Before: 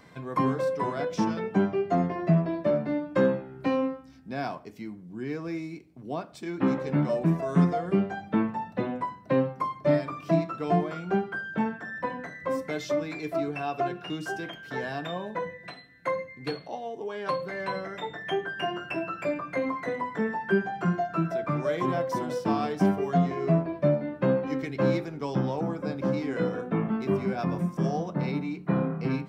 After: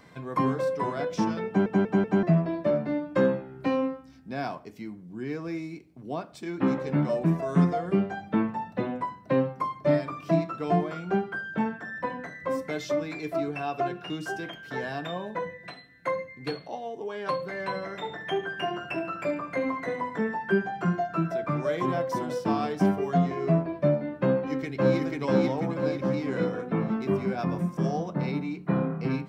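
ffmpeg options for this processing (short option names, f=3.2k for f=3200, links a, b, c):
-filter_complex "[0:a]asplit=3[a][b][c];[a]afade=t=out:st=17.81:d=0.02[d];[b]aecho=1:1:72|144|216|288|360:0.224|0.119|0.0629|0.0333|0.0177,afade=t=in:st=17.81:d=0.02,afade=t=out:st=20.17:d=0.02[e];[c]afade=t=in:st=20.17:d=0.02[f];[d][e][f]amix=inputs=3:normalize=0,asplit=2[g][h];[h]afade=t=in:st=24.36:d=0.01,afade=t=out:st=24.99:d=0.01,aecho=0:1:490|980|1470|1960|2450|2940|3430:0.944061|0.47203|0.236015|0.118008|0.0590038|0.0295019|0.014751[i];[g][i]amix=inputs=2:normalize=0,asplit=5[j][k][l][m][n];[j]atrim=end=1.662[o];[k]atrim=start=1.468:end=1.662[p];[l]atrim=start=1.468:end=1.662[q];[m]atrim=start=1.468:end=1.662[r];[n]atrim=start=2.228[s];[o][p]acrossfade=d=0.004:c1=hsin:c2=hsin[t];[t][q]acrossfade=d=0.004:c1=hsin:c2=hsin[u];[u][r]acrossfade=d=0.004:c1=hsin:c2=hsin[v];[v][s]acrossfade=d=0.004:c1=hsin:c2=hsin"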